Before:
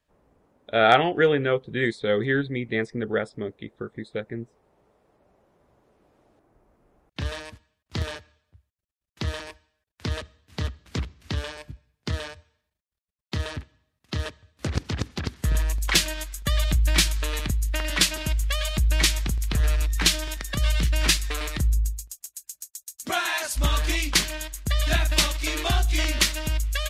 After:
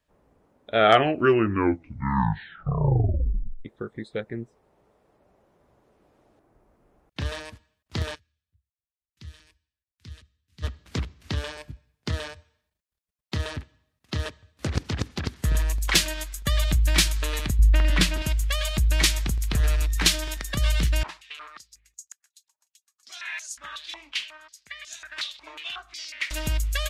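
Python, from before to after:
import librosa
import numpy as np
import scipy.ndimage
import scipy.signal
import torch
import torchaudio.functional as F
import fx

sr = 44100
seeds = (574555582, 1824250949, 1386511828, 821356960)

y = fx.tone_stack(x, sr, knobs='6-0-2', at=(8.14, 10.62), fade=0.02)
y = fx.bass_treble(y, sr, bass_db=10, treble_db=-7, at=(17.59, 18.22))
y = fx.filter_held_bandpass(y, sr, hz=5.5, low_hz=920.0, high_hz=6600.0, at=(21.03, 26.31))
y = fx.edit(y, sr, fx.tape_stop(start_s=0.76, length_s=2.89), tone=tone)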